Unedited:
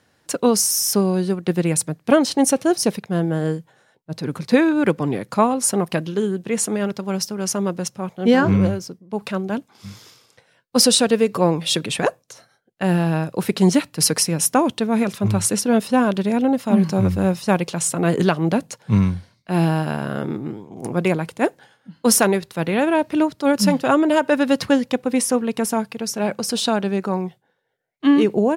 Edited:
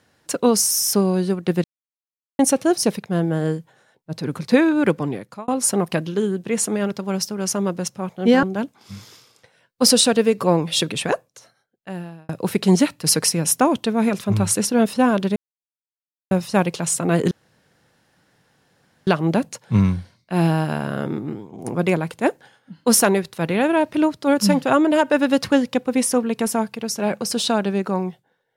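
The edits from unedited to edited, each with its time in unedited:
1.64–2.39 mute
4.93–5.48 fade out
8.43–9.37 cut
11.83–13.23 fade out
16.3–17.25 mute
18.25 insert room tone 1.76 s

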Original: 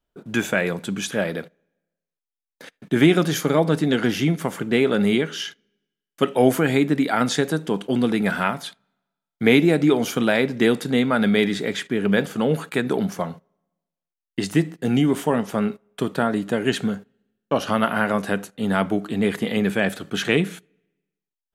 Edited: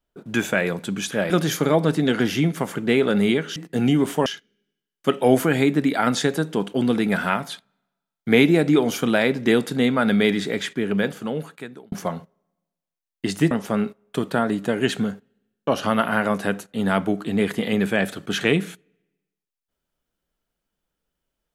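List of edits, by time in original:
1.3–3.14 cut
11.81–13.06 fade out
14.65–15.35 move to 5.4

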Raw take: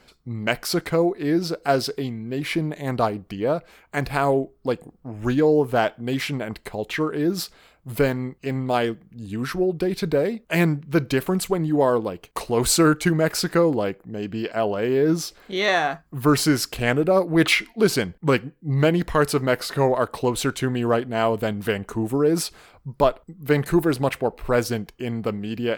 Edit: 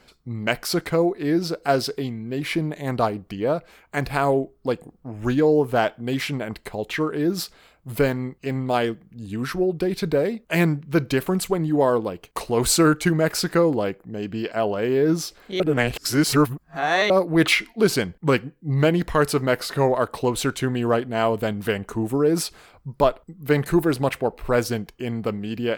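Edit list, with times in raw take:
15.6–17.1 reverse

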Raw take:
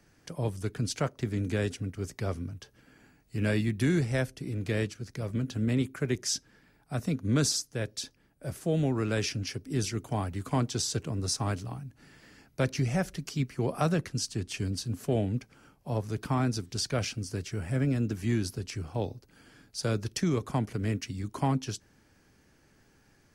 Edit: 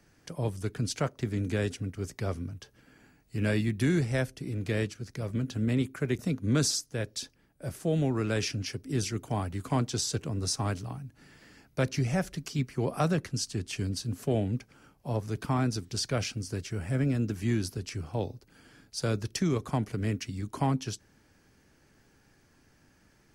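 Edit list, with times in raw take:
6.19–7 cut

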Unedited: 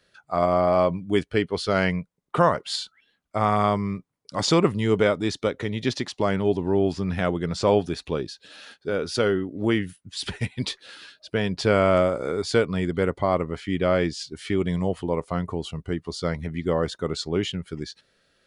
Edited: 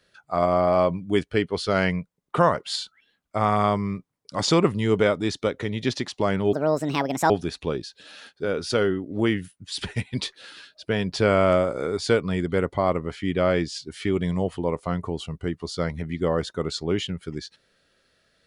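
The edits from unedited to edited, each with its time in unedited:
6.53–7.75 speed 158%

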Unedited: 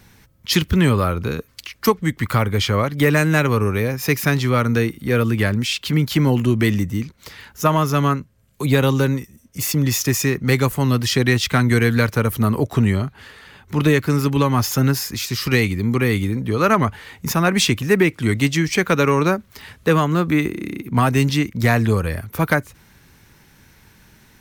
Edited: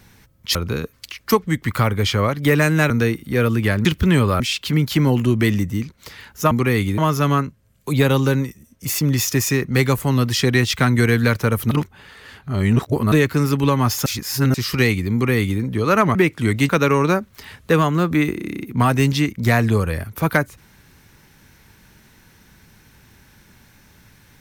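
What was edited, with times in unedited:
0.55–1.1 move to 5.6
3.45–4.65 cut
12.44–13.85 reverse
14.79–15.27 reverse
15.86–16.33 copy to 7.71
16.88–17.96 cut
18.5–18.86 cut

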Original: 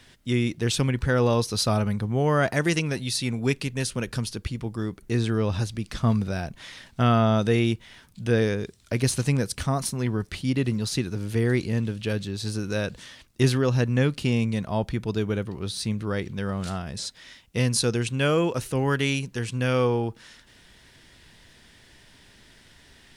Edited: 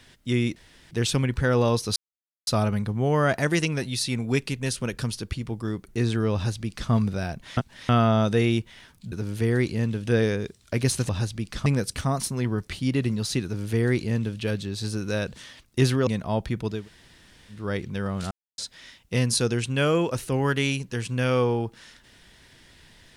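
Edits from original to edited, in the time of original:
0.56 insert room tone 0.35 s
1.61 insert silence 0.51 s
5.48–6.05 copy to 9.28
6.71–7.03 reverse
11.06–12.01 copy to 8.26
13.69–14.5 cut
15.2–16.03 room tone, crossfade 0.24 s
16.74–17.01 mute

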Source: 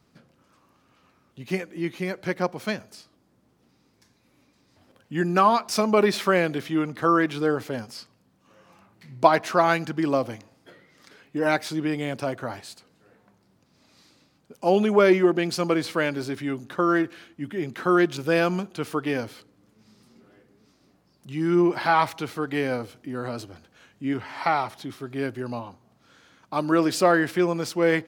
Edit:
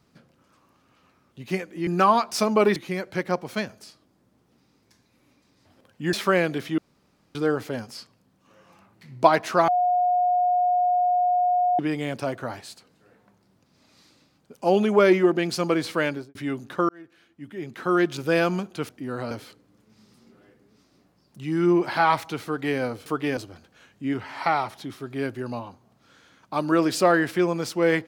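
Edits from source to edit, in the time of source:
5.24–6.13 move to 1.87
6.78–7.35 room tone
9.68–11.79 bleep 719 Hz -18 dBFS
16.08–16.35 studio fade out
16.89–18.2 fade in
18.89–19.2 swap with 22.95–23.37

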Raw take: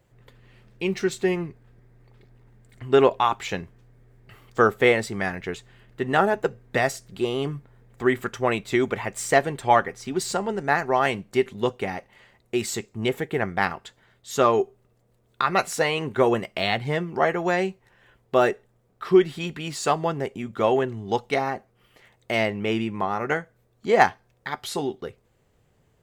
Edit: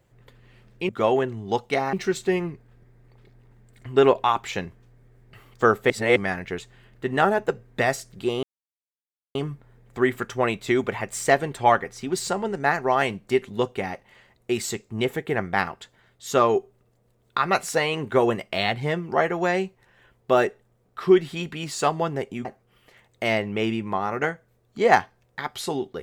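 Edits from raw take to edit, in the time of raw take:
4.86–5.12 reverse
7.39 insert silence 0.92 s
20.49–21.53 move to 0.89

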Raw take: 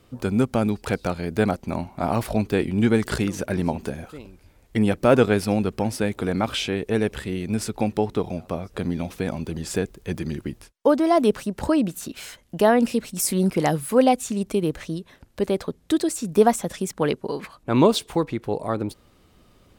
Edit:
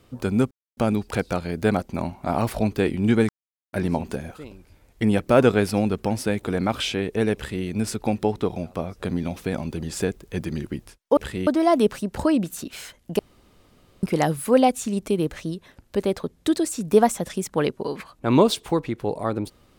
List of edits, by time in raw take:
0.51 insert silence 0.26 s
3.03–3.47 mute
7.09–7.39 copy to 10.91
12.63–13.47 room tone

